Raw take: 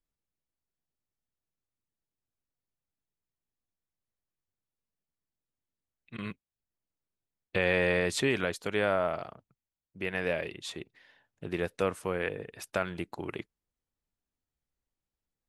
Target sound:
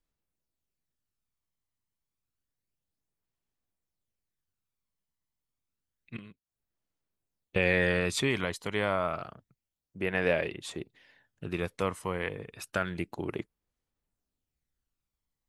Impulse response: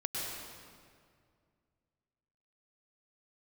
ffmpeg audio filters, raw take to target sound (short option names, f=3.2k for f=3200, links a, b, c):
-filter_complex "[0:a]asettb=1/sr,asplit=3[a][b][c];[a]atrim=end=6.174[d];[b]atrim=start=6.17:end=7.56,asetpts=PTS-STARTPTS,afade=t=in:d=0.004:c=qsin,afade=t=out:st=1.386:d=0.004:c=qsin,acompressor=threshold=-48dB:ratio=20[e];[c]atrim=start=7.556[f];[d][e]acrossfade=d=0.004:c1=hsin:c2=qsin[g];[g][f]acrossfade=d=0.004:c1=qsin:c2=hsin,aphaser=in_gain=1:out_gain=1:delay=1:decay=0.38:speed=0.29:type=sinusoidal"